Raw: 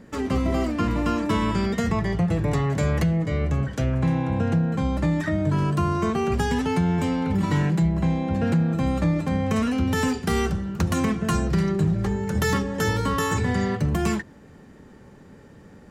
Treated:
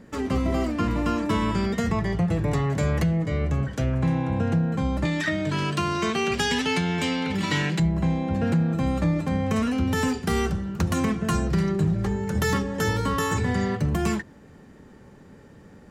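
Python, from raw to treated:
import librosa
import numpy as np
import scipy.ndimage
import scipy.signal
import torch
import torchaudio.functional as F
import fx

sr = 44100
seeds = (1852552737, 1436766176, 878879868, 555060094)

y = fx.weighting(x, sr, curve='D', at=(5.05, 7.8))
y = F.gain(torch.from_numpy(y), -1.0).numpy()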